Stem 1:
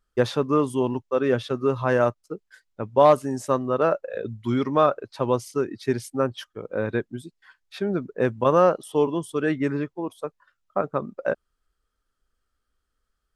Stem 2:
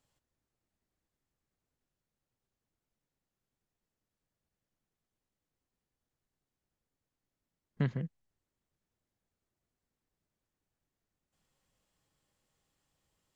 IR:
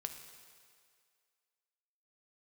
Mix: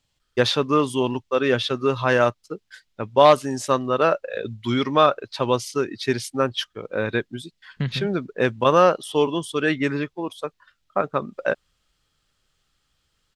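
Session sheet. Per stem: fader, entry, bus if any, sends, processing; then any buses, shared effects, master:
+0.5 dB, 0.20 s, no send, dry
0.0 dB, 0.00 s, no send, low shelf 160 Hz +10.5 dB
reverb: off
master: bell 3600 Hz +12 dB 2.1 oct

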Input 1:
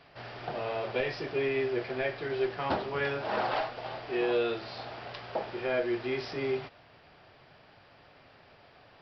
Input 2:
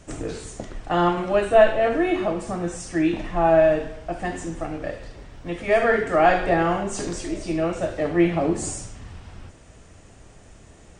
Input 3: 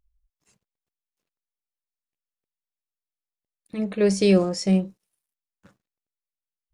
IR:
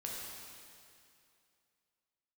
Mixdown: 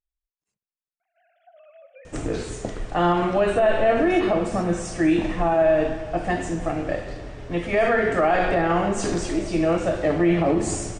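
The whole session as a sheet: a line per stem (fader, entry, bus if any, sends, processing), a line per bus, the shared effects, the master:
-17.0 dB, 1.00 s, send -6.5 dB, sine-wave speech; compressor, threshold -29 dBFS, peak gain reduction 8.5 dB
+2.0 dB, 2.05 s, send -8 dB, high shelf 8200 Hz -8.5 dB; limiter -15.5 dBFS, peak gain reduction 11.5 dB
-19.0 dB, 0.00 s, no send, dry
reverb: on, RT60 2.5 s, pre-delay 6 ms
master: dry

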